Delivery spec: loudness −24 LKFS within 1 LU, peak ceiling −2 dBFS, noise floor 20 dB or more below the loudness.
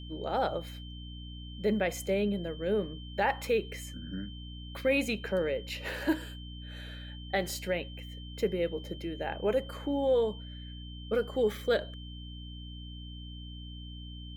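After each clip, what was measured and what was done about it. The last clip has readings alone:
mains hum 60 Hz; hum harmonics up to 300 Hz; level of the hum −41 dBFS; interfering tone 3,100 Hz; level of the tone −49 dBFS; integrated loudness −32.5 LKFS; sample peak −16.5 dBFS; target loudness −24.0 LKFS
→ hum removal 60 Hz, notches 5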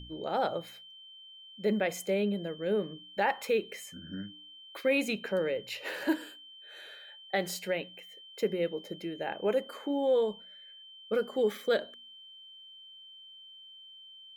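mains hum none found; interfering tone 3,100 Hz; level of the tone −49 dBFS
→ notch filter 3,100 Hz, Q 30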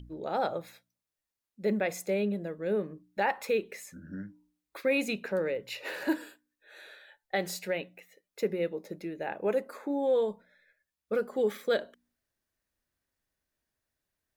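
interfering tone none found; integrated loudness −32.0 LKFS; sample peak −17.0 dBFS; target loudness −24.0 LKFS
→ level +8 dB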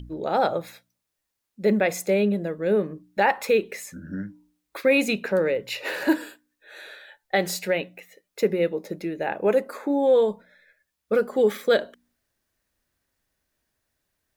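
integrated loudness −24.0 LKFS; sample peak −9.0 dBFS; background noise floor −81 dBFS

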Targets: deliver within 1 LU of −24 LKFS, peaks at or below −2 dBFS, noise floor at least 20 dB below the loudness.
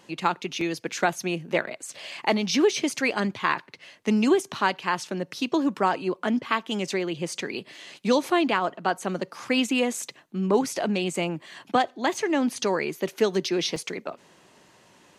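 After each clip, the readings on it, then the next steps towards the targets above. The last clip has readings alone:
number of dropouts 2; longest dropout 2.7 ms; integrated loudness −26.0 LKFS; sample peak −7.5 dBFS; target loudness −24.0 LKFS
→ repair the gap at 0:00.61/0:13.76, 2.7 ms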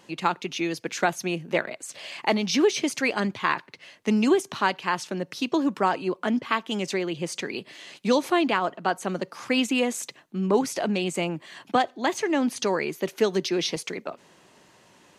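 number of dropouts 0; integrated loudness −26.0 LKFS; sample peak −7.5 dBFS; target loudness −24.0 LKFS
→ level +2 dB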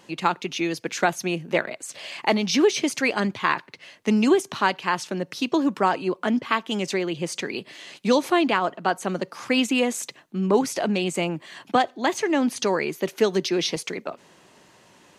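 integrated loudness −24.0 LKFS; sample peak −5.5 dBFS; background noise floor −55 dBFS

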